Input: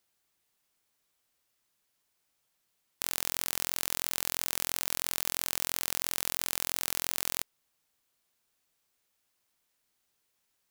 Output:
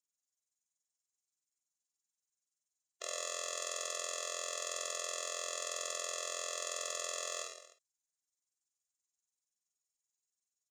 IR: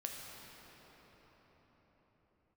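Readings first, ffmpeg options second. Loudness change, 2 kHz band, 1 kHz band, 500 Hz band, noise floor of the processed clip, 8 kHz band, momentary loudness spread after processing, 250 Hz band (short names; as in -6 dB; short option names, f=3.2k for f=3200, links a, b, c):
-7.5 dB, -5.0 dB, -2.0 dB, +4.5 dB, under -85 dBFS, -3.5 dB, 3 LU, under -15 dB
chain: -filter_complex "[0:a]acrossover=split=5100[a][b];[a]acrusher=bits=3:dc=4:mix=0:aa=0.000001[c];[b]tremolo=f=21:d=0.919[d];[c][d]amix=inputs=2:normalize=0,highpass=270,equalizer=f=620:t=q:w=4:g=7,equalizer=f=950:t=q:w=4:g=-8,equalizer=f=2.3k:t=q:w=4:g=-8,equalizer=f=4.8k:t=q:w=4:g=-5,equalizer=f=6.8k:t=q:w=4:g=6,lowpass=f=7.7k:w=0.5412,lowpass=f=7.7k:w=1.3066,acrusher=bits=7:mode=log:mix=0:aa=0.000001,aecho=1:1:50|105|165.5|232|305.3:0.631|0.398|0.251|0.158|0.1[e];[1:a]atrim=start_sample=2205,afade=t=out:st=0.14:d=0.01,atrim=end_sample=6615,asetrate=66150,aresample=44100[f];[e][f]afir=irnorm=-1:irlink=0,afftfilt=real='re*eq(mod(floor(b*sr/1024/350),2),1)':imag='im*eq(mod(floor(b*sr/1024/350),2),1)':win_size=1024:overlap=0.75,volume=7dB"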